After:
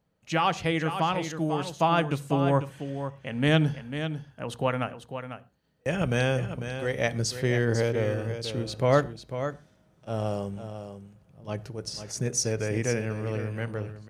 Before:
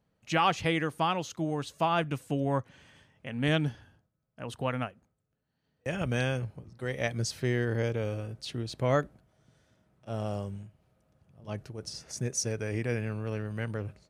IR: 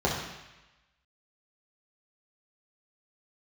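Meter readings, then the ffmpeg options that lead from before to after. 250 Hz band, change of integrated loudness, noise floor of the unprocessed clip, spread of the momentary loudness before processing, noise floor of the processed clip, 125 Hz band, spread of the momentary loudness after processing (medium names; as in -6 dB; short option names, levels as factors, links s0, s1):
+4.0 dB, +3.5 dB, -79 dBFS, 12 LU, -64 dBFS, +4.0 dB, 13 LU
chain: -filter_complex "[0:a]aecho=1:1:497:0.335,dynaudnorm=f=280:g=11:m=1.58,asplit=2[s0][s1];[1:a]atrim=start_sample=2205,afade=t=out:st=0.18:d=0.01,atrim=end_sample=8379[s2];[s1][s2]afir=irnorm=-1:irlink=0,volume=0.0398[s3];[s0][s3]amix=inputs=2:normalize=0"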